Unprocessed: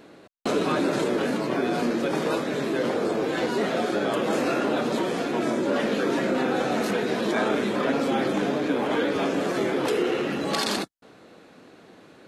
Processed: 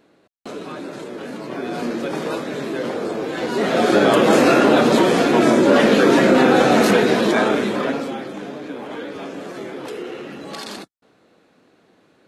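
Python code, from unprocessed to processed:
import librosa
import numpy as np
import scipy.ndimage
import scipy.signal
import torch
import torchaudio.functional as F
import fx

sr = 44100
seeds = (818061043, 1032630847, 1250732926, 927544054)

y = fx.gain(x, sr, db=fx.line((1.1, -8.0), (1.87, 0.5), (3.38, 0.5), (3.94, 11.0), (6.94, 11.0), (7.88, 2.5), (8.25, -6.5)))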